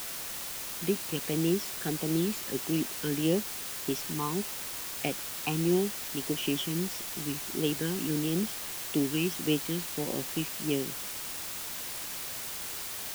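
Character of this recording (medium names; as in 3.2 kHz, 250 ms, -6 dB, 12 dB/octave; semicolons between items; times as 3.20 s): phasing stages 12, 1.6 Hz, lowest notch 590–1500 Hz; a quantiser's noise floor 6-bit, dither triangular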